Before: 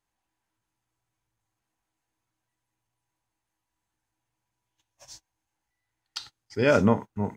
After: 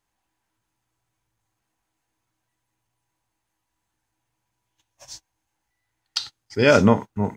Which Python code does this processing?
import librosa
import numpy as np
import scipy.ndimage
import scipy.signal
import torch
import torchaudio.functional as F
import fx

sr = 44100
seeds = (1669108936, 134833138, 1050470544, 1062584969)

y = fx.dynamic_eq(x, sr, hz=4500.0, q=0.81, threshold_db=-46.0, ratio=4.0, max_db=6)
y = y * librosa.db_to_amplitude(5.0)